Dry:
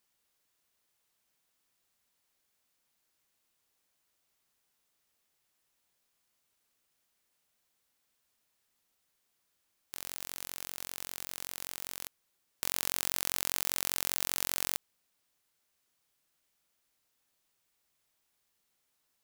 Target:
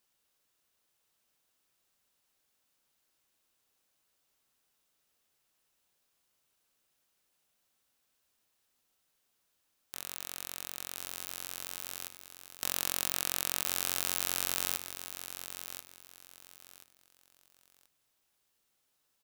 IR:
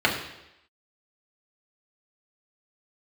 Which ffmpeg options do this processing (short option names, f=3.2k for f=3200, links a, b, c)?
-filter_complex "[0:a]aecho=1:1:1032|2064|3096:0.316|0.0791|0.0198,asplit=2[a][b];[1:a]atrim=start_sample=2205,asetrate=38367,aresample=44100[c];[b][c]afir=irnorm=-1:irlink=0,volume=-30dB[d];[a][d]amix=inputs=2:normalize=0"